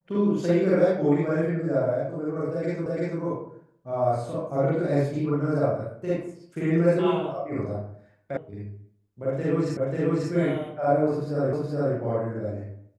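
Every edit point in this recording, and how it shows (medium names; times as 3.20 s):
2.86 s: repeat of the last 0.34 s
8.37 s: sound stops dead
9.77 s: repeat of the last 0.54 s
11.53 s: repeat of the last 0.42 s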